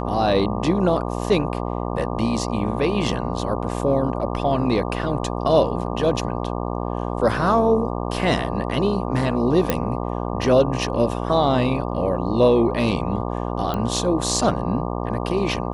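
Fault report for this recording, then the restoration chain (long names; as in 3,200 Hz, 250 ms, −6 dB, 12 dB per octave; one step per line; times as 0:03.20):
mains buzz 60 Hz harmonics 20 −26 dBFS
0:09.70: click −5 dBFS
0:13.74: click −13 dBFS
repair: click removal
hum removal 60 Hz, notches 20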